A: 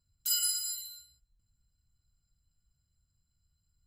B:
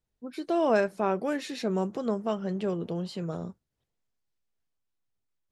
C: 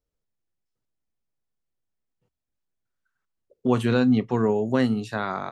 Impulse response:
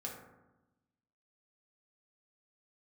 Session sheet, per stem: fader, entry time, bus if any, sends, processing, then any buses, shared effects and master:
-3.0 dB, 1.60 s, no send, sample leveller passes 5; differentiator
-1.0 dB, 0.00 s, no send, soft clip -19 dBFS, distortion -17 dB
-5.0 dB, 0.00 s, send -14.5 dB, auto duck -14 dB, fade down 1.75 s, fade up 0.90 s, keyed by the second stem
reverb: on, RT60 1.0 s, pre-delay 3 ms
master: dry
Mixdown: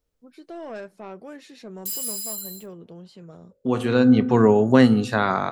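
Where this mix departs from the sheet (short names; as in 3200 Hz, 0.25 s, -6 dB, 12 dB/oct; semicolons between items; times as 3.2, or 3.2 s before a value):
stem A -3.0 dB -> -10.0 dB; stem B -1.0 dB -> -9.5 dB; stem C -5.0 dB -> +6.0 dB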